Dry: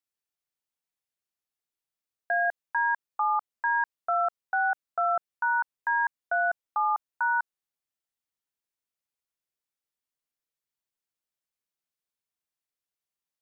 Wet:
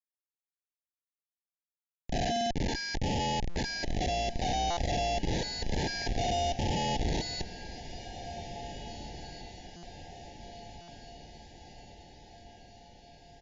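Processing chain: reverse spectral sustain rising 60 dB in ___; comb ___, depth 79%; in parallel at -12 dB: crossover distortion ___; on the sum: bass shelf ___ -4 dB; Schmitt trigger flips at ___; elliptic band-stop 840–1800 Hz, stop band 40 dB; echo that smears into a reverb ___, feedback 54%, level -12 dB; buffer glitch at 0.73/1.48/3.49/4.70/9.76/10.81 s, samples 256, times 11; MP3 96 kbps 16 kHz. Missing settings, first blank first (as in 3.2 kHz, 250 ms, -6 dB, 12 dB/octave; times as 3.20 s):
1.33 s, 6.9 ms, -51.5 dBFS, 460 Hz, -24 dBFS, 1925 ms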